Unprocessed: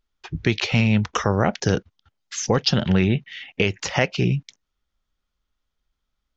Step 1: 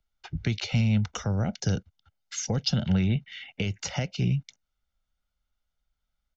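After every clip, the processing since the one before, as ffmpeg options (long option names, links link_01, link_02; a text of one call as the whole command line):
ffmpeg -i in.wav -filter_complex "[0:a]aecho=1:1:1.4:0.48,acrossover=split=100|370|3700[link_01][link_02][link_03][link_04];[link_03]acompressor=threshold=-32dB:ratio=5[link_05];[link_01][link_02][link_05][link_04]amix=inputs=4:normalize=0,volume=-5.5dB" out.wav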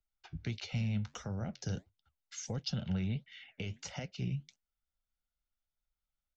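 ffmpeg -i in.wav -af "flanger=delay=4.1:depth=8.6:regen=-71:speed=1.5:shape=sinusoidal,volume=-6.5dB" out.wav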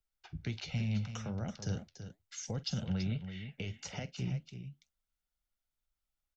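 ffmpeg -i in.wav -af "aecho=1:1:46|331:0.133|0.316" out.wav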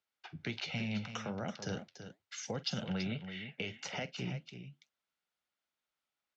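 ffmpeg -i in.wav -af "highpass=120,lowpass=2900,aemphasis=mode=production:type=bsi,volume=5.5dB" out.wav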